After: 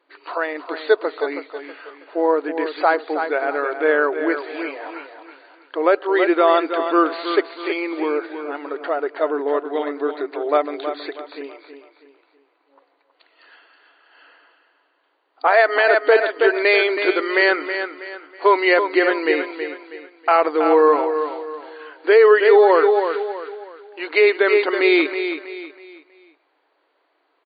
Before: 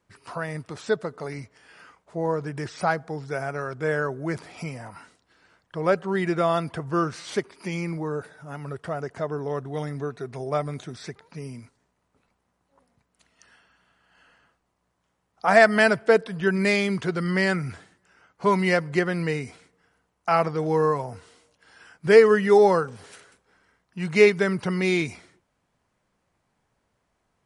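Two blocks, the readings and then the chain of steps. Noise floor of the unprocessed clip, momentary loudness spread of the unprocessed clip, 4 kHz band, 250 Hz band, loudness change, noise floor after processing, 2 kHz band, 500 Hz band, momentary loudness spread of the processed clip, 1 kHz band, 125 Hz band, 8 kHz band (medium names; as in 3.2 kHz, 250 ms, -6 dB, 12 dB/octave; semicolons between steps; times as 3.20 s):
-74 dBFS, 19 LU, +6.5 dB, +3.0 dB, +5.0 dB, -66 dBFS, +6.5 dB, +6.0 dB, 18 LU, +7.0 dB, under -35 dB, under -35 dB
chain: FFT band-pass 270–4700 Hz; on a send: feedback delay 322 ms, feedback 35%, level -9 dB; on the sum: loudness maximiser +12 dB; trim -3.5 dB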